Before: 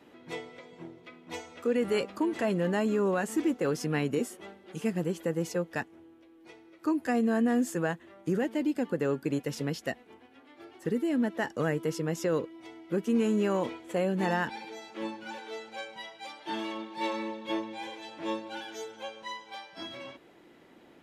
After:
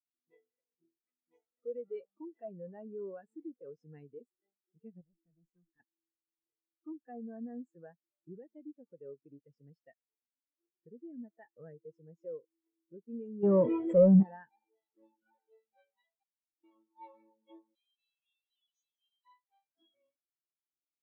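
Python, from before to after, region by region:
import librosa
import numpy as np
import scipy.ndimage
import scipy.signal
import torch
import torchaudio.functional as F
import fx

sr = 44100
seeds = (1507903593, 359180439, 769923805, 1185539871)

y = fx.chain(x, sr, fx.fixed_phaser(hz=1500.0, stages=4),
    fx.tube_stage(drive_db=35.0, bias=0.75),
    fx.sustainer(db_per_s=80.0), at=(5.01, 5.8))
y = fx.chain(y, sr, fx.low_shelf(hz=390.0, db=8.0),
    fx.leveller(passes=3),
    fx.env_flatten(amount_pct=70), at=(13.43, 14.23))
y = fx.chain(y, sr, fx.level_steps(step_db=9),
    fx.octave_resonator(note='D', decay_s=0.49), at=(16.23, 16.64))
y = fx.chain(y, sr, fx.brickwall_highpass(low_hz=2400.0),
    fx.env_flatten(amount_pct=70), at=(17.75, 19.25))
y = fx.dynamic_eq(y, sr, hz=260.0, q=1.1, threshold_db=-40.0, ratio=4.0, max_db=-6)
y = fx.spectral_expand(y, sr, expansion=2.5)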